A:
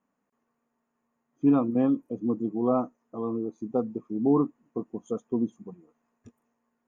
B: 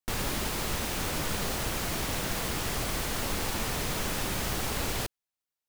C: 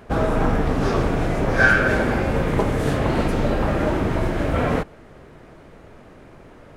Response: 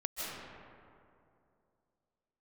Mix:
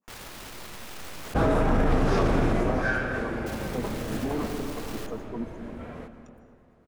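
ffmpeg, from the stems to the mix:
-filter_complex "[0:a]acrossover=split=480[a][b];[a]aeval=exprs='val(0)*(1-1/2+1/2*cos(2*PI*8.7*n/s))':c=same[c];[b]aeval=exprs='val(0)*(1-1/2-1/2*cos(2*PI*8.7*n/s))':c=same[d];[c][d]amix=inputs=2:normalize=0,volume=2.5dB,asplit=2[e][f];[f]volume=-12dB[g];[1:a]acrusher=bits=6:dc=4:mix=0:aa=0.000001,highshelf=f=4.9k:g=-6,volume=-9.5dB,asplit=3[h][i][j];[h]atrim=end=1.34,asetpts=PTS-STARTPTS,afade=t=out:st=1.336:d=0.004:c=hsin[k];[i]atrim=start=1.34:end=3.46,asetpts=PTS-STARTPTS,volume=0[l];[j]atrim=start=3.46,asetpts=PTS-STARTPTS,afade=t=in:d=0.004:c=hsin[m];[k][l][m]concat=n=3:v=0:a=1,asplit=2[n][o];[o]volume=-11.5dB[p];[2:a]adelay=1250,volume=-2dB,afade=t=out:st=2.24:d=0.67:silence=0.223872,afade=t=out:st=4.45:d=0.24:silence=0.421697,asplit=2[q][r];[r]volume=-10dB[s];[e][n]amix=inputs=2:normalize=0,lowshelf=f=380:g=-10.5,alimiter=level_in=2.5dB:limit=-24dB:level=0:latency=1:release=79,volume=-2.5dB,volume=0dB[t];[3:a]atrim=start_sample=2205[u];[g][p][s]amix=inputs=3:normalize=0[v];[v][u]afir=irnorm=-1:irlink=0[w];[q][t][w]amix=inputs=3:normalize=0,alimiter=limit=-14dB:level=0:latency=1:release=32"

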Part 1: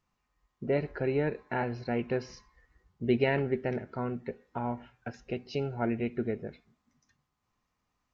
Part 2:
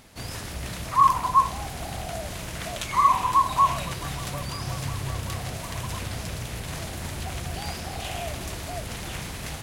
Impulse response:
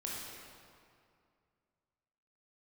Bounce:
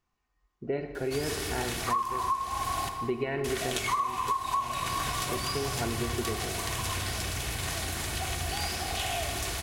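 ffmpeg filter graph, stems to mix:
-filter_complex "[0:a]volume=-3.5dB,asplit=2[a][b];[b]volume=-7dB[c];[1:a]tiltshelf=f=880:g=-3.5,adelay=950,volume=-2.5dB,asplit=3[d][e][f];[d]atrim=end=2.89,asetpts=PTS-STARTPTS,afade=t=out:st=2.886:d=0.004:c=hsin[g];[e]atrim=start=2.89:end=3.44,asetpts=PTS-STARTPTS,volume=0[h];[f]atrim=start=3.44,asetpts=PTS-STARTPTS,afade=t=in:d=0.004:c=hsin[i];[g][h][i]concat=n=3:v=0:a=1,asplit=2[j][k];[k]volume=-5dB[l];[2:a]atrim=start_sample=2205[m];[c][l]amix=inputs=2:normalize=0[n];[n][m]afir=irnorm=-1:irlink=0[o];[a][j][o]amix=inputs=3:normalize=0,aecho=1:1:2.7:0.36,acompressor=threshold=-26dB:ratio=12"

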